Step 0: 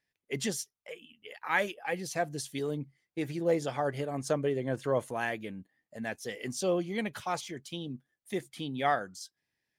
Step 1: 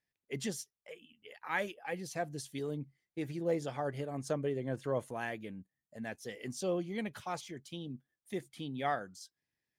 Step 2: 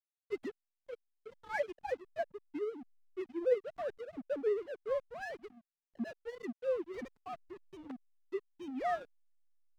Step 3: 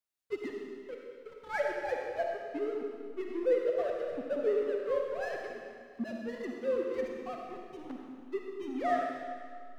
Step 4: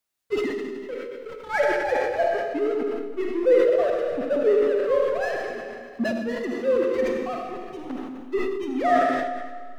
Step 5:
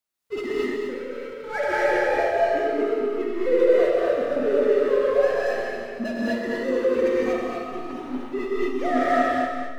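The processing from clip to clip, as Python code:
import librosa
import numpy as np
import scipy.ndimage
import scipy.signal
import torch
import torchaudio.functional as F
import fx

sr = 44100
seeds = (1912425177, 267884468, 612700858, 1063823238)

y1 = fx.spec_box(x, sr, start_s=5.63, length_s=0.28, low_hz=200.0, high_hz=5200.0, gain_db=-11)
y1 = fx.low_shelf(y1, sr, hz=360.0, db=4.0)
y1 = y1 * librosa.db_to_amplitude(-6.5)
y2 = fx.sine_speech(y1, sr)
y2 = fx.backlash(y2, sr, play_db=-40.0)
y3 = fx.rev_freeverb(y2, sr, rt60_s=2.0, hf_ratio=0.95, predelay_ms=15, drr_db=0.0)
y3 = y3 * librosa.db_to_amplitude(2.0)
y4 = fx.sustainer(y3, sr, db_per_s=33.0)
y4 = y4 * librosa.db_to_amplitude(9.0)
y5 = y4 + 10.0 ** (-8.0 / 20.0) * np.pad(y4, (int(227 * sr / 1000.0), 0))[:len(y4)]
y5 = fx.rev_gated(y5, sr, seeds[0], gate_ms=270, shape='rising', drr_db=-5.0)
y5 = y5 * librosa.db_to_amplitude(-5.0)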